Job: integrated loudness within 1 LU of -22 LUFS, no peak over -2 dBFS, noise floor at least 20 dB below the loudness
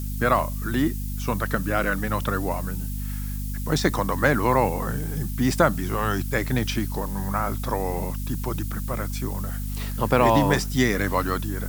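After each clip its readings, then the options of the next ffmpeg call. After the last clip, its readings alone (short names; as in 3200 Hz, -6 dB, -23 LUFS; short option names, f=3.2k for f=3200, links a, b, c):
hum 50 Hz; harmonics up to 250 Hz; hum level -27 dBFS; noise floor -29 dBFS; noise floor target -45 dBFS; loudness -25.0 LUFS; peak -3.0 dBFS; loudness target -22.0 LUFS
-> -af "bandreject=f=50:t=h:w=4,bandreject=f=100:t=h:w=4,bandreject=f=150:t=h:w=4,bandreject=f=200:t=h:w=4,bandreject=f=250:t=h:w=4"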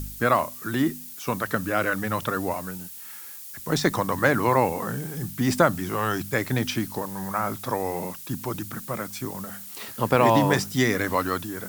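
hum none; noise floor -40 dBFS; noise floor target -46 dBFS
-> -af "afftdn=nr=6:nf=-40"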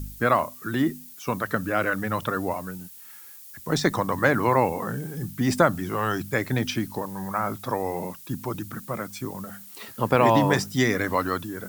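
noise floor -45 dBFS; noise floor target -46 dBFS
-> -af "afftdn=nr=6:nf=-45"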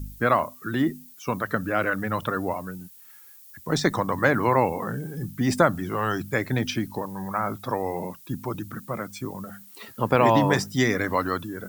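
noise floor -49 dBFS; loudness -25.5 LUFS; peak -4.0 dBFS; loudness target -22.0 LUFS
-> -af "volume=3.5dB,alimiter=limit=-2dB:level=0:latency=1"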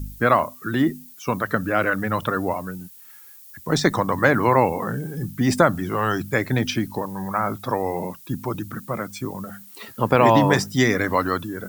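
loudness -22.0 LUFS; peak -2.0 dBFS; noise floor -45 dBFS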